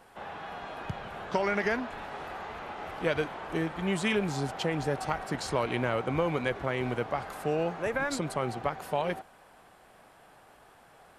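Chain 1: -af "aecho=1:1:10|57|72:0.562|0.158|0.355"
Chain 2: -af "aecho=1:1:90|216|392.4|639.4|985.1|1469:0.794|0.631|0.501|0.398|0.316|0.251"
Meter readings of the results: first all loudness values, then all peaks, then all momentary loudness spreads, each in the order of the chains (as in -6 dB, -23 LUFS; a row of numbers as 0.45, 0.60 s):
-30.0, -28.0 LUFS; -13.0, -11.0 dBFS; 12, 13 LU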